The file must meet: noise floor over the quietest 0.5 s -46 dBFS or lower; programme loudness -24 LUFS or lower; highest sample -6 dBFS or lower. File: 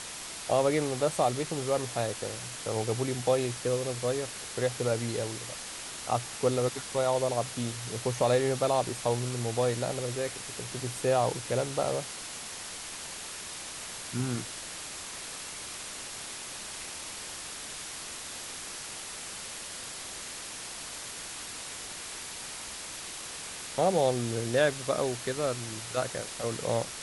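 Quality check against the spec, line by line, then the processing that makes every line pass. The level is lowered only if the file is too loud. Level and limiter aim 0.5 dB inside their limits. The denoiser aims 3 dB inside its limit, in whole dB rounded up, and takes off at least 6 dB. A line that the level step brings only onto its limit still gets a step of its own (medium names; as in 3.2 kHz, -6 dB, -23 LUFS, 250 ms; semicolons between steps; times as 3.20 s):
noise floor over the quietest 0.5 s -41 dBFS: fail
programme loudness -32.0 LUFS: pass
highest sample -13.5 dBFS: pass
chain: noise reduction 8 dB, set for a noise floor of -41 dBFS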